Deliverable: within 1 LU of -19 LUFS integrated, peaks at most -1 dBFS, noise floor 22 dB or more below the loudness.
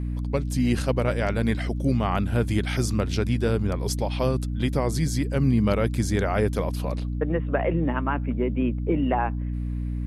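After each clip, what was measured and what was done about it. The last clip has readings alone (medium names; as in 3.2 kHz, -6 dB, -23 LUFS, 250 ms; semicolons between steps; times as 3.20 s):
hum 60 Hz; highest harmonic 300 Hz; hum level -26 dBFS; loudness -25.0 LUFS; peak level -10.5 dBFS; loudness target -19.0 LUFS
-> hum notches 60/120/180/240/300 Hz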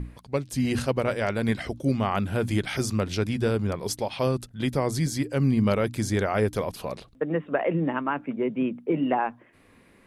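hum not found; loudness -27.0 LUFS; peak level -12.0 dBFS; loudness target -19.0 LUFS
-> trim +8 dB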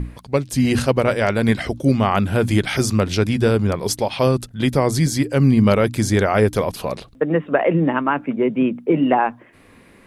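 loudness -19.0 LUFS; peak level -4.0 dBFS; noise floor -49 dBFS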